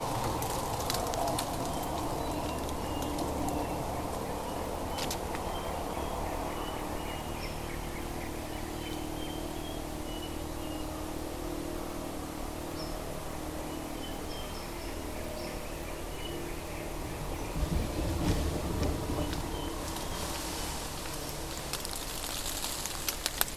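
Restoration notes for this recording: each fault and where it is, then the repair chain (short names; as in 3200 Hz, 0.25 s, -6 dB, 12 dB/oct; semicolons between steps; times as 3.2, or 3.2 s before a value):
crackle 35/s -39 dBFS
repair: de-click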